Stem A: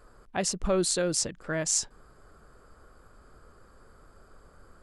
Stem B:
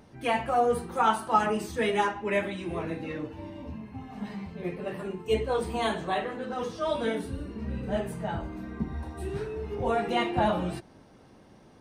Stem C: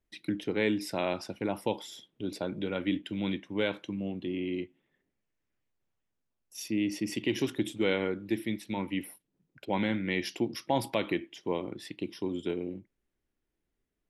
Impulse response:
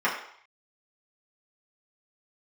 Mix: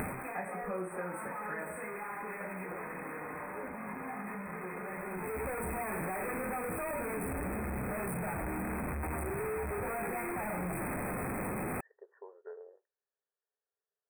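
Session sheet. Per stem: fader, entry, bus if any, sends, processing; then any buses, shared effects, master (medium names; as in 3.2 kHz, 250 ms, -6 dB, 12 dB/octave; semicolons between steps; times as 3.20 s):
-2.0 dB, 0.00 s, bus A, send -14 dB, none
+0.5 dB, 0.00 s, no bus, send -22.5 dB, one-bit comparator; auto duck -21 dB, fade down 0.35 s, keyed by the first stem
-6.5 dB, 0.00 s, bus A, no send, none
bus A: 0.0 dB, brick-wall FIR band-pass 390–1900 Hz; compression, threshold -42 dBFS, peak gain reduction 16 dB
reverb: on, RT60 0.65 s, pre-delay 3 ms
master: brick-wall FIR band-stop 2.6–7.9 kHz; compression 3:1, threshold -37 dBFS, peak gain reduction 10.5 dB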